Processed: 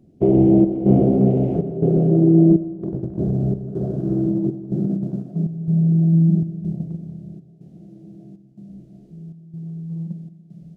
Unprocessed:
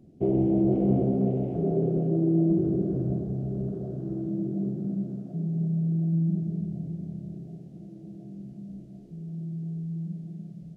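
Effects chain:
0:02.56–0:05.31: compressor whose output falls as the input rises −30 dBFS, ratio −0.5
noise gate −32 dBFS, range −8 dB
gate pattern "xxxxxx..x" 140 BPM −12 dB
convolution reverb RT60 1.3 s, pre-delay 63 ms, DRR 13.5 dB
level +9 dB

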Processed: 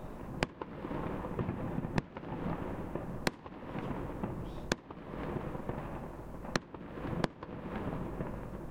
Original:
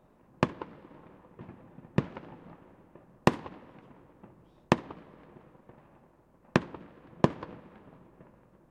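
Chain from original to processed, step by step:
downward compressor 10 to 1, threshold −48 dBFS, peak gain reduction 32 dB
low-shelf EQ 60 Hz +11.5 dB
level +16 dB

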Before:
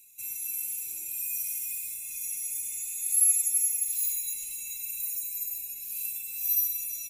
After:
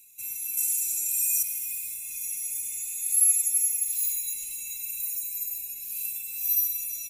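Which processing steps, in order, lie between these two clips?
0:00.57–0:01.43: parametric band 7,500 Hz +11 dB 1.5 octaves
level +1.5 dB

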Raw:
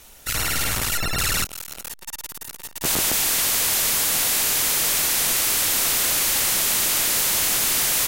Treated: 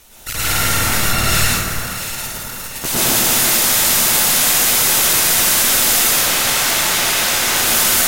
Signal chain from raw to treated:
0:06.09–0:07.56: mid-hump overdrive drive 17 dB, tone 3,900 Hz, clips at −14.5 dBFS
delay that swaps between a low-pass and a high-pass 342 ms, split 1,800 Hz, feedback 66%, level −7 dB
dense smooth reverb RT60 1.2 s, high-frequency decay 0.6×, pre-delay 90 ms, DRR −7 dB

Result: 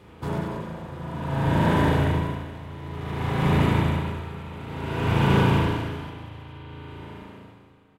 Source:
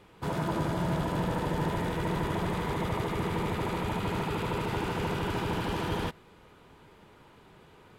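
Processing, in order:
high-pass filter 51 Hz
low-shelf EQ 280 Hz +6 dB
0:02.38–0:03.43: hard clipping −29.5 dBFS, distortion −14 dB
bouncing-ball delay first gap 190 ms, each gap 0.7×, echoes 5
spring reverb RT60 2 s, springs 36 ms, chirp 55 ms, DRR −5 dB
tremolo with a sine in dB 0.56 Hz, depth 18 dB
level +2.5 dB

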